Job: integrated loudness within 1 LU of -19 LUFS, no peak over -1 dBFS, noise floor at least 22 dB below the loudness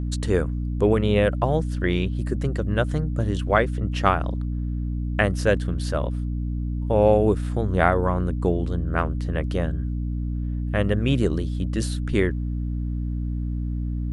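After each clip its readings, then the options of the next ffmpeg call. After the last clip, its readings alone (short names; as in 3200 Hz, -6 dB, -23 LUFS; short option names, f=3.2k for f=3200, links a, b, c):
hum 60 Hz; harmonics up to 300 Hz; hum level -24 dBFS; loudness -24.0 LUFS; peak -3.0 dBFS; loudness target -19.0 LUFS
-> -af "bandreject=f=60:t=h:w=4,bandreject=f=120:t=h:w=4,bandreject=f=180:t=h:w=4,bandreject=f=240:t=h:w=4,bandreject=f=300:t=h:w=4"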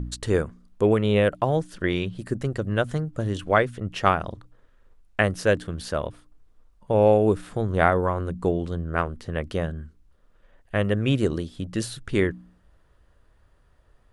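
hum none; loudness -24.5 LUFS; peak -3.5 dBFS; loudness target -19.0 LUFS
-> -af "volume=5.5dB,alimiter=limit=-1dB:level=0:latency=1"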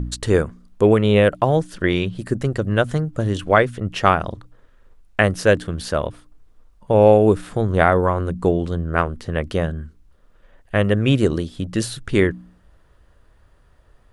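loudness -19.5 LUFS; peak -1.0 dBFS; noise floor -55 dBFS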